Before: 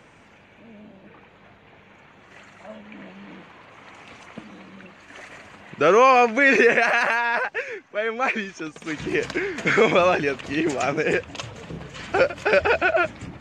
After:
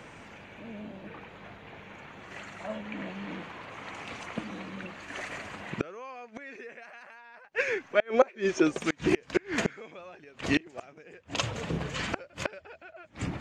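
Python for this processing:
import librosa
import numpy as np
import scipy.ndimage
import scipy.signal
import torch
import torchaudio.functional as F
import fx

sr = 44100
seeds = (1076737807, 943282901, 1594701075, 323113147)

y = fx.gate_flip(x, sr, shuts_db=-15.0, range_db=-32)
y = fx.small_body(y, sr, hz=(380.0, 550.0), ring_ms=45, db=13, at=(8.1, 8.79))
y = F.gain(torch.from_numpy(y), 3.5).numpy()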